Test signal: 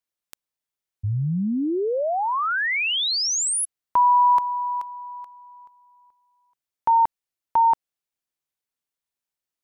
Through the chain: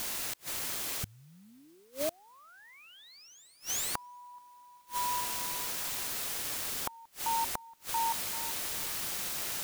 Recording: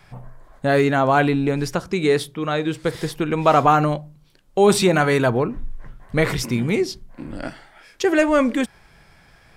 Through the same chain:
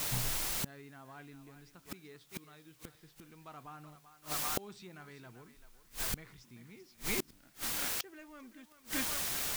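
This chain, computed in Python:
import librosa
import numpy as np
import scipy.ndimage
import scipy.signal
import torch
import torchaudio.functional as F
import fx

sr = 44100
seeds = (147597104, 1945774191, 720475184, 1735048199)

p1 = scipy.signal.sosfilt(scipy.signal.butter(4, 7100.0, 'lowpass', fs=sr, output='sos'), x)
p2 = fx.peak_eq(p1, sr, hz=550.0, db=-9.5, octaves=0.98)
p3 = p2 + fx.echo_thinned(p2, sr, ms=388, feedback_pct=26, hz=580.0, wet_db=-10.0, dry=0)
p4 = fx.quant_dither(p3, sr, seeds[0], bits=6, dither='triangular')
y = fx.gate_flip(p4, sr, shuts_db=-21.0, range_db=-32)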